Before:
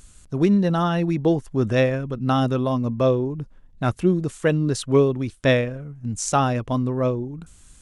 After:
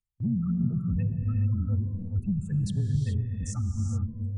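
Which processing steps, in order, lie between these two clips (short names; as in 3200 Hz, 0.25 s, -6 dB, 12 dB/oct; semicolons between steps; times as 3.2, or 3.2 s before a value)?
passive tone stack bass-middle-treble 6-0-2; spectral gate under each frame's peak -15 dB strong; transient shaper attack -10 dB, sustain +2 dB; frequency shift -16 Hz; spectral noise reduction 18 dB; resonant low shelf 240 Hz +8.5 dB, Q 3; dark delay 0.113 s, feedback 73%, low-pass 450 Hz, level -17.5 dB; in parallel at 0 dB: limiter -26.5 dBFS, peak gain reduction 10.5 dB; on the sum: gate with hold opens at -37 dBFS; granular stretch 0.56×, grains 20 ms; compressor, threshold -24 dBFS, peak gain reduction 6 dB; on a send at -2.5 dB: reverb, pre-delay 3 ms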